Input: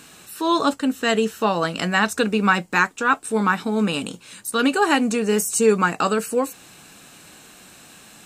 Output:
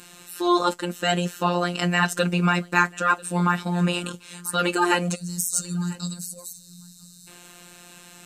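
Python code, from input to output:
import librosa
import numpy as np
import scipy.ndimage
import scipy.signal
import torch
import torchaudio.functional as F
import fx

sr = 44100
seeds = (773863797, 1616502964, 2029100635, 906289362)

p1 = fx.spec_box(x, sr, start_s=5.15, length_s=2.12, low_hz=210.0, high_hz=3600.0, gain_db=-25)
p2 = fx.robotise(p1, sr, hz=176.0)
p3 = np.clip(p2, -10.0 ** (-12.0 / 20.0), 10.0 ** (-12.0 / 20.0))
p4 = p2 + (p3 * 10.0 ** (-10.5 / 20.0))
p5 = p4 + 10.0 ** (-23.0 / 20.0) * np.pad(p4, (int(991 * sr / 1000.0), 0))[:len(p4)]
y = p5 * 10.0 ** (-1.0 / 20.0)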